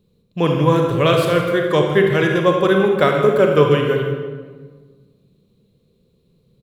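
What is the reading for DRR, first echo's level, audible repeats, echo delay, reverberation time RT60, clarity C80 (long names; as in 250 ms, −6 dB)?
1.5 dB, −13.5 dB, 1, 160 ms, 1.5 s, 4.5 dB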